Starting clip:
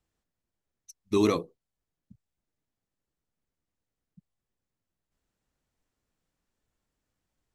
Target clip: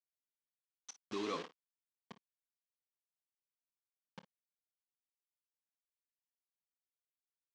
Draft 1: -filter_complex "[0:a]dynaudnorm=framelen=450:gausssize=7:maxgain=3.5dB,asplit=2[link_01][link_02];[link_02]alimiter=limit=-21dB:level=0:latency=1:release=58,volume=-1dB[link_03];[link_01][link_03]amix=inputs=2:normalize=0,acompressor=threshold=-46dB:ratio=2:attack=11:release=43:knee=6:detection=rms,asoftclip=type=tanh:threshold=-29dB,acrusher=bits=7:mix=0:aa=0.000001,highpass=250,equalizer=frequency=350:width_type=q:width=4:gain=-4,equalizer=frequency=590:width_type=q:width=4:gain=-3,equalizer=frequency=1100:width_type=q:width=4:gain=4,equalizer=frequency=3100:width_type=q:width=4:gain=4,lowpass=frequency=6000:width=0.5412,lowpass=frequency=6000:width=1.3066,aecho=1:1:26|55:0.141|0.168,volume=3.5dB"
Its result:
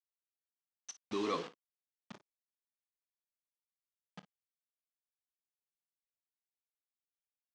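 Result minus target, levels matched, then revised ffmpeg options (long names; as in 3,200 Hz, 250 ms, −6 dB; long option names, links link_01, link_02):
downward compressor: peak gain reduction −5 dB
-filter_complex "[0:a]dynaudnorm=framelen=450:gausssize=7:maxgain=3.5dB,asplit=2[link_01][link_02];[link_02]alimiter=limit=-21dB:level=0:latency=1:release=58,volume=-1dB[link_03];[link_01][link_03]amix=inputs=2:normalize=0,acompressor=threshold=-56.5dB:ratio=2:attack=11:release=43:knee=6:detection=rms,asoftclip=type=tanh:threshold=-29dB,acrusher=bits=7:mix=0:aa=0.000001,highpass=250,equalizer=frequency=350:width_type=q:width=4:gain=-4,equalizer=frequency=590:width_type=q:width=4:gain=-3,equalizer=frequency=1100:width_type=q:width=4:gain=4,equalizer=frequency=3100:width_type=q:width=4:gain=4,lowpass=frequency=6000:width=0.5412,lowpass=frequency=6000:width=1.3066,aecho=1:1:26|55:0.141|0.168,volume=3.5dB"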